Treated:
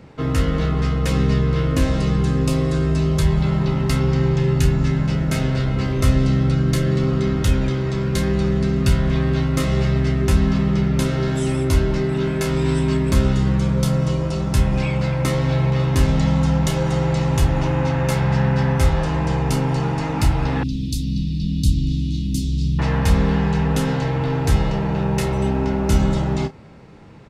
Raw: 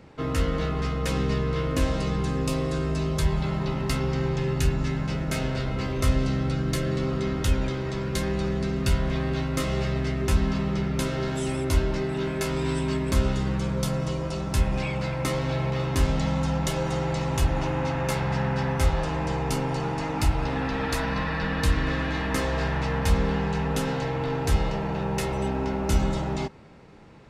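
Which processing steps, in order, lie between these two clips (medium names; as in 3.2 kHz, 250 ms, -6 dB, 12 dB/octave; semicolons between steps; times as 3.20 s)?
peaking EQ 120 Hz +4.5 dB 2.2 oct; doubling 31 ms -12 dB; 20.63–22.79 s: inverse Chebyshev band-stop 630–1600 Hz, stop band 60 dB; trim +3.5 dB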